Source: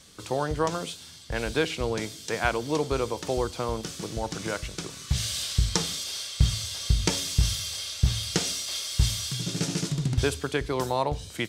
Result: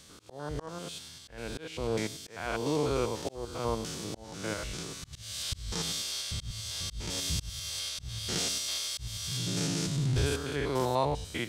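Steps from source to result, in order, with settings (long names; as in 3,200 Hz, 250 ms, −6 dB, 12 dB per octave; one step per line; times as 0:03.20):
spectrum averaged block by block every 100 ms
volume swells 389 ms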